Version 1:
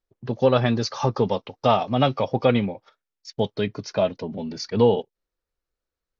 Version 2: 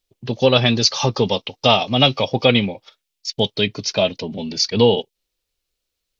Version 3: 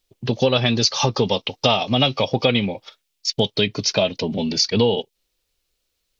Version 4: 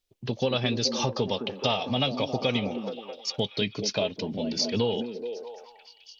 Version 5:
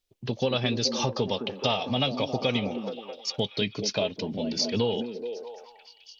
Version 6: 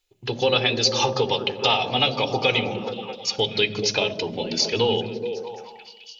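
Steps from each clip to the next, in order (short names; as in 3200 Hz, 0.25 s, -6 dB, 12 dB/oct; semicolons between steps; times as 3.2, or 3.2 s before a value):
resonant high shelf 2100 Hz +9.5 dB, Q 1.5; gain +3.5 dB
compressor 3:1, threshold -21 dBFS, peak gain reduction 9.5 dB; gain +4.5 dB
delay with a stepping band-pass 0.213 s, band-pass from 270 Hz, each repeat 0.7 oct, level -3.5 dB; gain -8.5 dB
nothing audible
reverb RT60 1.2 s, pre-delay 3 ms, DRR 15.5 dB; gain +4 dB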